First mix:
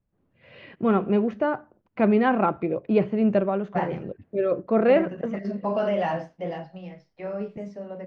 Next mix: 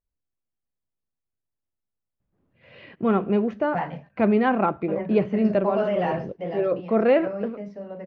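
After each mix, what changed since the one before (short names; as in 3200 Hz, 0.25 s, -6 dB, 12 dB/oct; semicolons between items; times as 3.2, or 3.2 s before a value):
first voice: entry +2.20 s; second voice: add LPF 4600 Hz 12 dB/oct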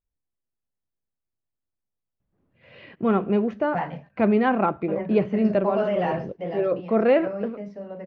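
none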